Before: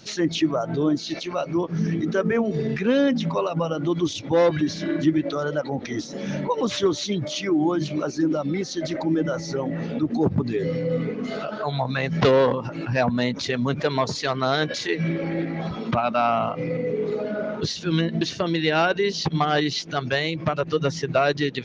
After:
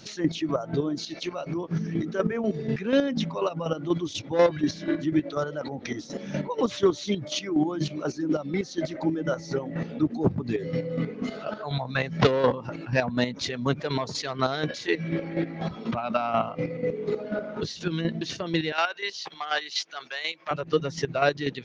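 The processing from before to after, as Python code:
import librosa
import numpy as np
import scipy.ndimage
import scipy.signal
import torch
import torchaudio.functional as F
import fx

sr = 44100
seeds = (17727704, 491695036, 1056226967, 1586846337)

y = fx.highpass(x, sr, hz=930.0, slope=12, at=(18.72, 20.51))
y = fx.chopper(y, sr, hz=4.1, depth_pct=60, duty_pct=30)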